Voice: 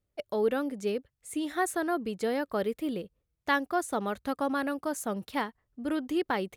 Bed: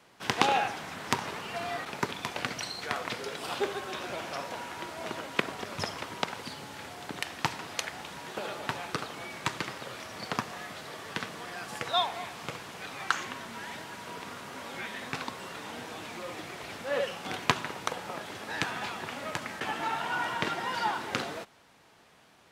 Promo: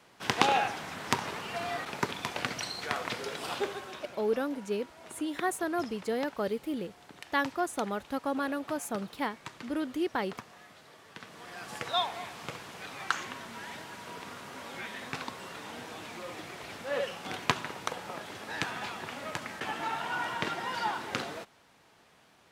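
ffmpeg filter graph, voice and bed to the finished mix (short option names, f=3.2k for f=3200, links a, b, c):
-filter_complex "[0:a]adelay=3850,volume=-2dB[a];[1:a]volume=10.5dB,afade=t=out:st=3.44:d=0.72:silence=0.237137,afade=t=in:st=11.18:d=0.55:silence=0.298538[b];[a][b]amix=inputs=2:normalize=0"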